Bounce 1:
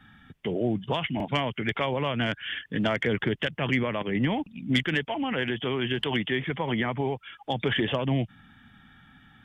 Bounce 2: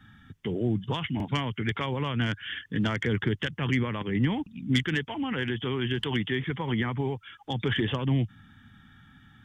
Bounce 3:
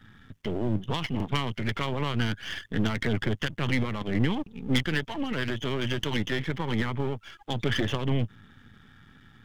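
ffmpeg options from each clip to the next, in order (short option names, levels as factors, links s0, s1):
-af "equalizer=f=100:t=o:w=0.67:g=6,equalizer=f=630:t=o:w=0.67:g=-11,equalizer=f=2500:t=o:w=0.67:g=-5,equalizer=f=6300:t=o:w=0.67:g=5"
-af "aeval=exprs='if(lt(val(0),0),0.251*val(0),val(0))':c=same,volume=1.5"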